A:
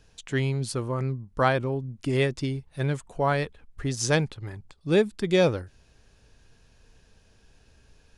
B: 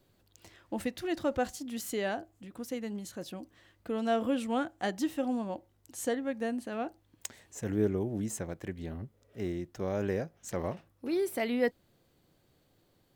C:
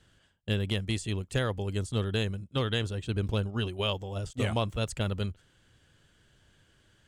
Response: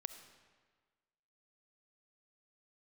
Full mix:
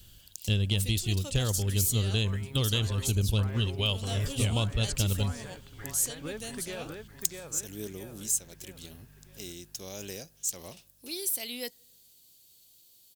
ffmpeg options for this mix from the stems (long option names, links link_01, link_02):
-filter_complex "[0:a]equalizer=frequency=1500:width=0.43:gain=11.5,alimiter=limit=-18dB:level=0:latency=1:release=398,aeval=exprs='val(0)+0.00891*(sin(2*PI*50*n/s)+sin(2*PI*2*50*n/s)/2+sin(2*PI*3*50*n/s)/3+sin(2*PI*4*50*n/s)/4+sin(2*PI*5*50*n/s)/5)':channel_layout=same,adelay=1350,volume=-12.5dB,asplit=2[link_01][link_02];[link_02]volume=-4.5dB[link_03];[1:a]highshelf=frequency=3800:gain=10.5,volume=-11dB,asplit=2[link_04][link_05];[link_05]volume=-22dB[link_06];[2:a]aemphasis=mode=reproduction:type=bsi,volume=-3.5dB,asplit=3[link_07][link_08][link_09];[link_08]volume=-10dB[link_10];[link_09]apad=whole_len=420158[link_11];[link_01][link_11]sidechaincompress=threshold=-30dB:ratio=8:attack=16:release=812[link_12];[link_04][link_07]amix=inputs=2:normalize=0,aexciter=amount=8.8:drive=3.9:freq=2600,acompressor=threshold=-35dB:ratio=1.5,volume=0dB[link_13];[3:a]atrim=start_sample=2205[link_14];[link_06][link_10]amix=inputs=2:normalize=0[link_15];[link_15][link_14]afir=irnorm=-1:irlink=0[link_16];[link_03]aecho=0:1:647|1294|1941|2588|3235|3882:1|0.46|0.212|0.0973|0.0448|0.0206[link_17];[link_12][link_13][link_16][link_17]amix=inputs=4:normalize=0"